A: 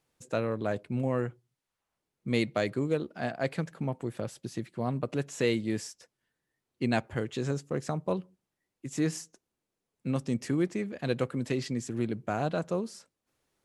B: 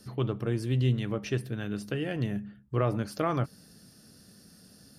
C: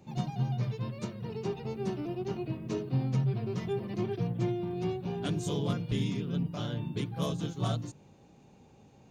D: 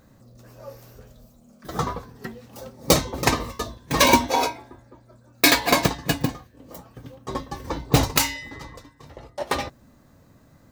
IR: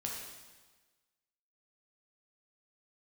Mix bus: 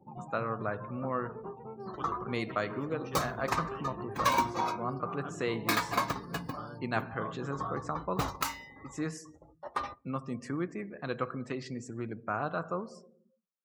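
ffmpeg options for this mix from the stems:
-filter_complex "[0:a]volume=-9dB,asplit=3[link_01][link_02][link_03];[link_02]volume=-9dB[link_04];[1:a]lowshelf=frequency=330:gain=-7.5,alimiter=level_in=3dB:limit=-24dB:level=0:latency=1:release=304,volume=-3dB,adelay=1800,volume=1.5dB,asplit=2[link_05][link_06];[link_06]volume=-19.5dB[link_07];[2:a]lowpass=1500,equalizer=frequency=69:width=0.35:gain=-8.5,volume=0.5dB,asplit=2[link_08][link_09];[link_09]volume=-23dB[link_10];[3:a]adelay=250,volume=-17.5dB,asplit=2[link_11][link_12];[link_12]volume=-20.5dB[link_13];[link_03]apad=whole_len=299374[link_14];[link_05][link_14]sidechaincompress=threshold=-55dB:ratio=6:attack=9.2:release=109[link_15];[link_15][link_08]amix=inputs=2:normalize=0,equalizer=frequency=4500:width_type=o:width=0.61:gain=7,acompressor=threshold=-50dB:ratio=2,volume=0dB[link_16];[4:a]atrim=start_sample=2205[link_17];[link_04][link_07][link_10][link_13]amix=inputs=4:normalize=0[link_18];[link_18][link_17]afir=irnorm=-1:irlink=0[link_19];[link_01][link_11][link_16][link_19]amix=inputs=4:normalize=0,afftdn=noise_reduction=30:noise_floor=-56,equalizer=frequency=1200:width=1.8:gain=14.5"

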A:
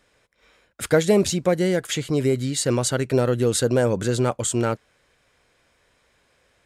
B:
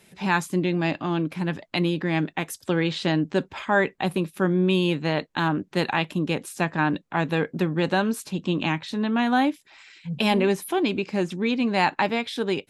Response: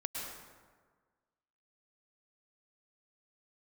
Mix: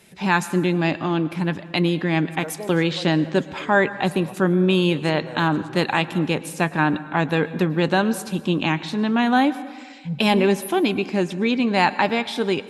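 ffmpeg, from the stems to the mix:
-filter_complex "[0:a]equalizer=frequency=900:width_type=o:width=1.3:gain=12.5,adelay=1500,volume=-18.5dB[link_01];[1:a]volume=2dB,asplit=3[link_02][link_03][link_04];[link_03]volume=-13.5dB[link_05];[link_04]apad=whole_len=359647[link_06];[link_01][link_06]sidechaincompress=threshold=-22dB:ratio=8:attack=21:release=850[link_07];[2:a]atrim=start_sample=2205[link_08];[link_05][link_08]afir=irnorm=-1:irlink=0[link_09];[link_07][link_02][link_09]amix=inputs=3:normalize=0"

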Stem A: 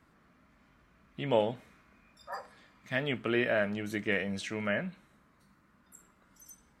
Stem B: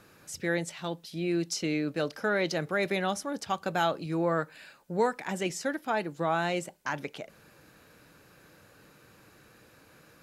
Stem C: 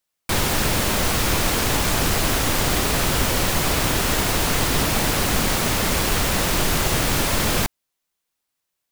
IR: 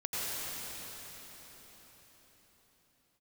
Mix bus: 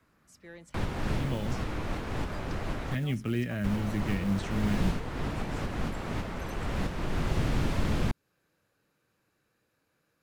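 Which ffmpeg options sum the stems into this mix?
-filter_complex "[0:a]asubboost=boost=9.5:cutoff=200,acrusher=bits=7:mode=log:mix=0:aa=0.000001,volume=-4dB[link_01];[1:a]asoftclip=type=tanh:threshold=-18dB,volume=-18dB,asplit=2[link_02][link_03];[2:a]acrossover=split=2600[link_04][link_05];[link_05]acompressor=threshold=-31dB:ratio=4:attack=1:release=60[link_06];[link_04][link_06]amix=inputs=2:normalize=0,aemphasis=mode=reproduction:type=75fm,adelay=450,volume=-4dB,asplit=3[link_07][link_08][link_09];[link_07]atrim=end=2.95,asetpts=PTS-STARTPTS,afade=type=out:start_time=2.946:duration=0.004:curve=hsin[link_10];[link_08]atrim=start=2.95:end=3.64,asetpts=PTS-STARTPTS,volume=0[link_11];[link_09]atrim=start=3.64,asetpts=PTS-STARTPTS,afade=type=in:duration=0.004:curve=hsin[link_12];[link_10][link_11][link_12]concat=n=3:v=0:a=1[link_13];[link_03]apad=whole_len=413025[link_14];[link_13][link_14]sidechaincompress=threshold=-51dB:ratio=6:attack=8:release=492[link_15];[link_01][link_02][link_15]amix=inputs=3:normalize=0,acrossover=split=310|3000[link_16][link_17][link_18];[link_17]acompressor=threshold=-37dB:ratio=6[link_19];[link_16][link_19][link_18]amix=inputs=3:normalize=0"

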